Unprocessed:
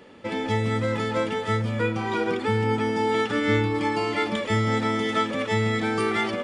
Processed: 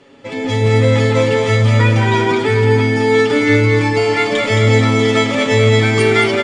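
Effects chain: LPF 8200 Hz 24 dB/oct; high shelf 6500 Hz +8 dB; comb 7.3 ms, depth 83%; split-band echo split 740 Hz, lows 0.118 s, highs 0.219 s, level -5 dB; AGC

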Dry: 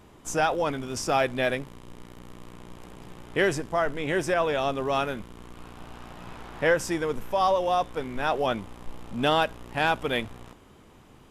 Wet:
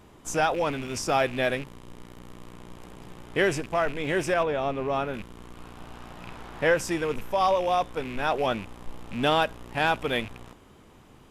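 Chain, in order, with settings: rattling part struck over -39 dBFS, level -30 dBFS; 4.43–5.14 high shelf 2300 Hz -11.5 dB

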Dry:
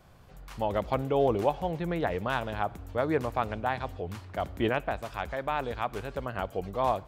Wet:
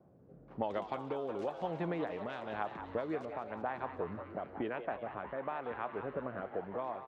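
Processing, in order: HPF 200 Hz 12 dB/oct; low-pass opened by the level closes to 480 Hz, open at -23 dBFS; LPF 7600 Hz 12 dB/oct, from 3.25 s 1900 Hz; compressor 12:1, threshold -36 dBFS, peak gain reduction 16.5 dB; rotary speaker horn 1 Hz; frequency-shifting echo 0.183 s, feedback 63%, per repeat +130 Hz, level -10 dB; gain +4.5 dB

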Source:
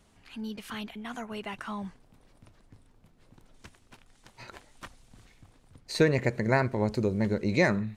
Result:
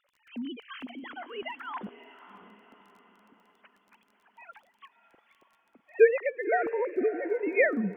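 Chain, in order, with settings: sine-wave speech; crackle 12/s -50 dBFS; diffused feedback echo 0.597 s, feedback 47%, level -13.5 dB

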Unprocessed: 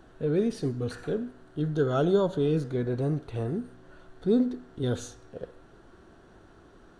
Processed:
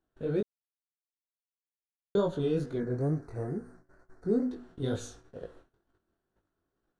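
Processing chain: 0.41–2.15 mute; 2.78–4.51 Chebyshev band-stop 1900–5200 Hz, order 2; gate -49 dBFS, range -26 dB; chorus 2.2 Hz, delay 18.5 ms, depth 5.3 ms

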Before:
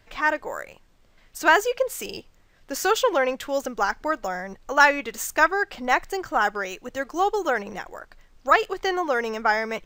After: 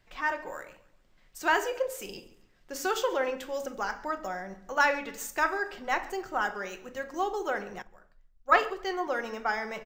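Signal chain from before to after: feedback echo 0.138 s, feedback 39%, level -20.5 dB; shoebox room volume 690 m³, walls furnished, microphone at 0.98 m; 7.82–9.07 three-band expander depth 70%; gain -8.5 dB

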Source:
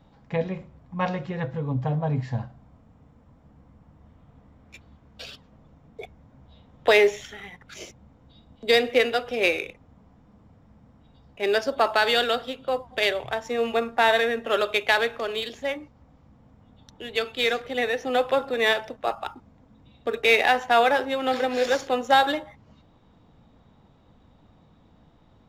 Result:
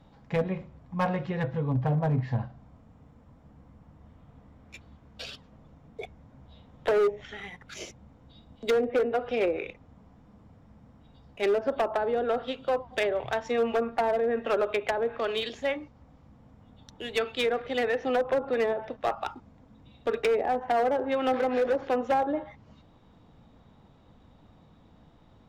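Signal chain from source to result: treble ducked by the level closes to 600 Hz, closed at -17.5 dBFS; overloaded stage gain 20 dB

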